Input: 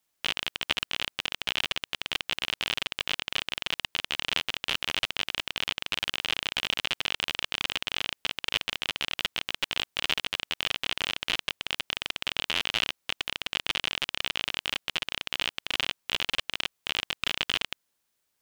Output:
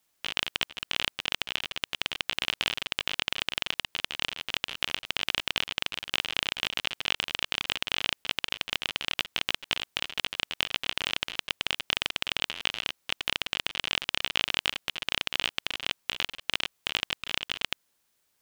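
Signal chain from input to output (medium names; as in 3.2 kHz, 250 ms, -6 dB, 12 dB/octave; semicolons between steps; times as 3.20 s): compressor with a negative ratio -33 dBFS, ratio -0.5; trim +2 dB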